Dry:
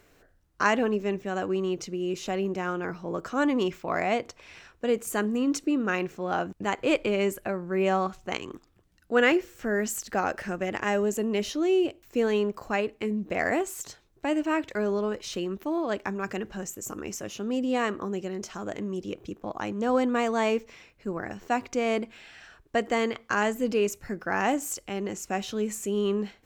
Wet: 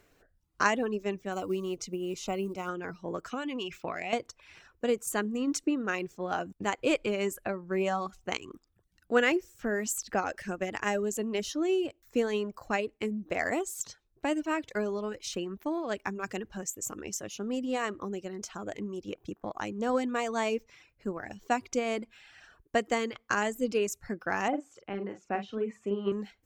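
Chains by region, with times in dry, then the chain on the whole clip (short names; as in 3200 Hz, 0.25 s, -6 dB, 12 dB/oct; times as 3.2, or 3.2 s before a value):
1.32–2.69 low shelf 60 Hz +5.5 dB + short-mantissa float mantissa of 4-bit + Butterworth band-stop 1700 Hz, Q 3.6
3.31–4.13 bell 2800 Hz +11 dB 0.64 oct + compressor 12:1, threshold -26 dBFS
24.48–26.12 BPF 110–2100 Hz + low shelf 160 Hz -4.5 dB + doubler 45 ms -5 dB
whole clip: reverb removal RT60 0.54 s; dynamic EQ 7500 Hz, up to +5 dB, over -50 dBFS, Q 0.76; transient shaper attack +4 dB, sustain 0 dB; gain -4.5 dB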